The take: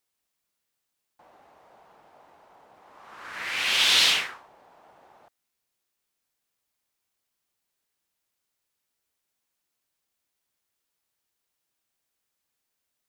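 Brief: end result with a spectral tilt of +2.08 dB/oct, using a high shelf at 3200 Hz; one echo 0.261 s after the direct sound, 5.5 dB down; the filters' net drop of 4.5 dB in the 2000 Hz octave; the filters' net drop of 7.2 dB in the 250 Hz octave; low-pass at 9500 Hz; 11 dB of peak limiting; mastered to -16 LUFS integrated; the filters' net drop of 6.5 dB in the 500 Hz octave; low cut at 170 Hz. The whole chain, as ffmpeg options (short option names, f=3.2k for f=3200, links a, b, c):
-af "highpass=170,lowpass=9.5k,equalizer=f=250:t=o:g=-6,equalizer=f=500:t=o:g=-6.5,equalizer=f=2k:t=o:g=-4,highshelf=f=3.2k:g=-3.5,alimiter=limit=-22.5dB:level=0:latency=1,aecho=1:1:261:0.531,volume=15dB"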